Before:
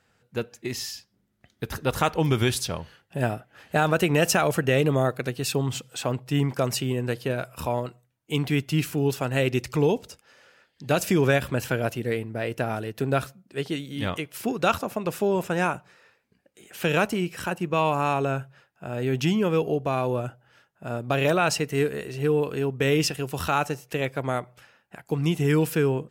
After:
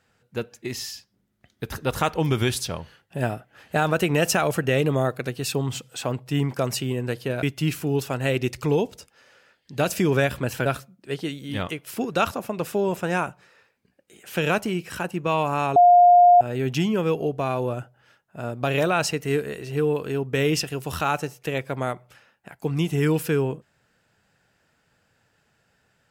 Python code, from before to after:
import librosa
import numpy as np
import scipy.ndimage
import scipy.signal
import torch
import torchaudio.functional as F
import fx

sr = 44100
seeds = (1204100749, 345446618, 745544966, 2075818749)

y = fx.edit(x, sr, fx.cut(start_s=7.43, length_s=1.11),
    fx.cut(start_s=11.77, length_s=1.36),
    fx.bleep(start_s=18.23, length_s=0.65, hz=708.0, db=-9.5), tone=tone)